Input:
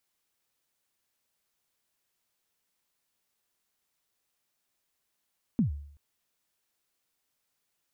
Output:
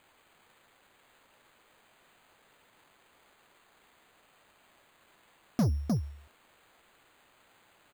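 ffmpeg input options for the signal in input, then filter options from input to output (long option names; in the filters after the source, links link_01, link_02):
-f lavfi -i "aevalsrc='0.112*pow(10,-3*t/0.63)*sin(2*PI*(260*0.117/log(72/260)*(exp(log(72/260)*min(t,0.117)/0.117)-1)+72*max(t-0.117,0)))':duration=0.38:sample_rate=44100"
-filter_complex "[0:a]asplit=2[link_01][link_02];[link_02]aecho=0:1:306:0.316[link_03];[link_01][link_03]amix=inputs=2:normalize=0,asplit=2[link_04][link_05];[link_05]highpass=frequency=720:poles=1,volume=34dB,asoftclip=type=tanh:threshold=-19dB[link_06];[link_04][link_06]amix=inputs=2:normalize=0,lowpass=frequency=1100:poles=1,volume=-6dB,acrusher=samples=8:mix=1:aa=0.000001"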